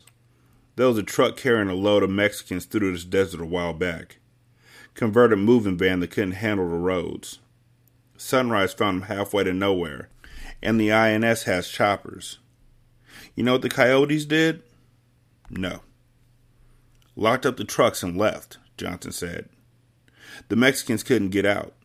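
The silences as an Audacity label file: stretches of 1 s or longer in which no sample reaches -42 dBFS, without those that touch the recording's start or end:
15.820000	17.020000	silence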